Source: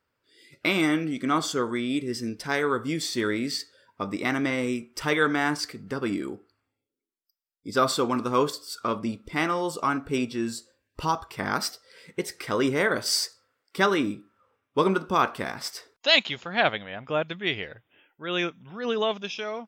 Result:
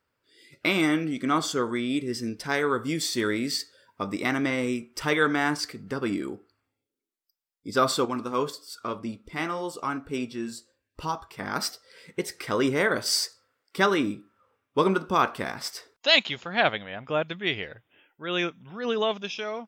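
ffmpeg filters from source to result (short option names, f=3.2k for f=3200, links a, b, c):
-filter_complex "[0:a]asettb=1/sr,asplit=3[a][b][c];[a]atrim=end=2.784[d];[b]atrim=start=2.78:end=4.27,asetpts=PTS-STARTPTS,afade=t=in:d=0.004:c=qsin,afade=t=out:st=1.486:d=0.004:c=qsin,highshelf=f=6.5k:g=5[e];[c]atrim=start=4.266[f];[d][e]acrossfade=d=0.004:c1=hsin:c2=qsin[g];[g][f]acrossfade=d=0.004:c1=qsin:c2=hsin,asettb=1/sr,asplit=3[h][i][j];[h]atrim=end=8.054[k];[i]atrim=start=8.05:end=11.56,asetpts=PTS-STARTPTS,afade=t=in:d=0.004:c=qsin,afade=t=out:st=3.506:d=0.004:c=qsin,flanger=delay=2.1:depth=3.3:regen=-73:speed=1.1:shape=triangular[l];[j]atrim=start=11.556[m];[k][l]acrossfade=d=0.004:c1=hsin:c2=qsin[n];[n][m]acrossfade=d=0.004:c1=qsin:c2=hsin"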